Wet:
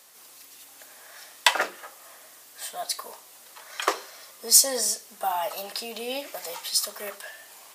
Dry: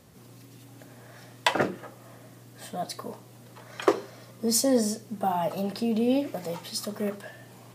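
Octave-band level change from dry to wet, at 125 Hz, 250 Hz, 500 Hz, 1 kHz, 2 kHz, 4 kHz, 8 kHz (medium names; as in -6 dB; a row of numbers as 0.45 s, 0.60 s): under -20 dB, -17.5 dB, -5.5 dB, +1.0 dB, +4.5 dB, +7.5 dB, +10.0 dB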